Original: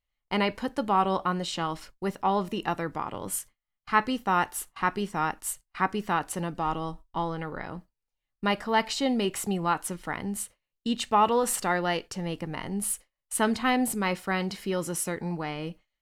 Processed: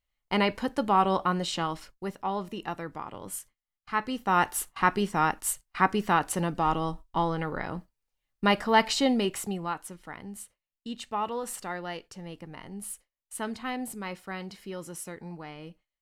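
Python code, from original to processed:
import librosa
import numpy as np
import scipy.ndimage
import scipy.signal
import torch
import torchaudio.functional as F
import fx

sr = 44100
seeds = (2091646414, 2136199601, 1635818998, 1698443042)

y = fx.gain(x, sr, db=fx.line((1.55, 1.0), (2.18, -5.5), (4.01, -5.5), (4.47, 3.0), (9.0, 3.0), (9.9, -9.0)))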